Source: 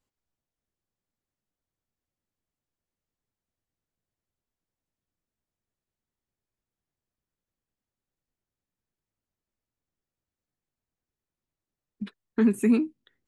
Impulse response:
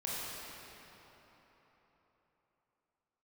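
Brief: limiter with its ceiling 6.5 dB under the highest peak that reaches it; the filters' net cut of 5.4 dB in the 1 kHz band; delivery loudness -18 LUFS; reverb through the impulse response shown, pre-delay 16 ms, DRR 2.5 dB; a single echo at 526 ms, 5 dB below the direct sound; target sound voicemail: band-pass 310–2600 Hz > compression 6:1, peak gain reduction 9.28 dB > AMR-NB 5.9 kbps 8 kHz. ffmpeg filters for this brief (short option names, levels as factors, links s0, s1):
-filter_complex "[0:a]equalizer=f=1000:t=o:g=-7,alimiter=limit=0.106:level=0:latency=1,aecho=1:1:526:0.562,asplit=2[s0][s1];[1:a]atrim=start_sample=2205,adelay=16[s2];[s1][s2]afir=irnorm=-1:irlink=0,volume=0.473[s3];[s0][s3]amix=inputs=2:normalize=0,highpass=310,lowpass=2600,acompressor=threshold=0.0224:ratio=6,volume=12.6" -ar 8000 -c:a libopencore_amrnb -b:a 5900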